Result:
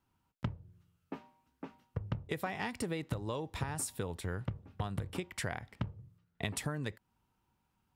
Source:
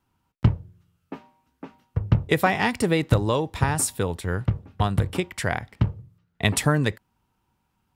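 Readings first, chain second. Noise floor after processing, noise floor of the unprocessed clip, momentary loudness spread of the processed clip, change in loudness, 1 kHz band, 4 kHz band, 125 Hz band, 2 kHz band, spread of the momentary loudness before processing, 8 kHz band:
-80 dBFS, -73 dBFS, 12 LU, -15.5 dB, -15.5 dB, -14.0 dB, -15.5 dB, -15.0 dB, 11 LU, -13.0 dB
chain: compression 5:1, threshold -28 dBFS, peak gain reduction 14.5 dB; trim -6 dB

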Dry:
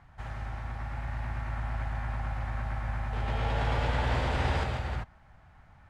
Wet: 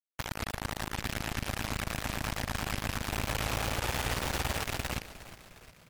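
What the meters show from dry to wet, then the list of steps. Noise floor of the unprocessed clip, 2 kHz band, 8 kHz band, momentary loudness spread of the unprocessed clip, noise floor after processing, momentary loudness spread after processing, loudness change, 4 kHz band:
-57 dBFS, +2.0 dB, no reading, 10 LU, -58 dBFS, 8 LU, -1.0 dB, +6.5 dB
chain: rattle on loud lows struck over -32 dBFS, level -29 dBFS; compression 4:1, threshold -39 dBFS, peak gain reduction 13 dB; bit crusher 6-bit; on a send: frequency-shifting echo 357 ms, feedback 56%, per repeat -58 Hz, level -15 dB; on the sum: trim +6 dB; MP3 80 kbps 44.1 kHz

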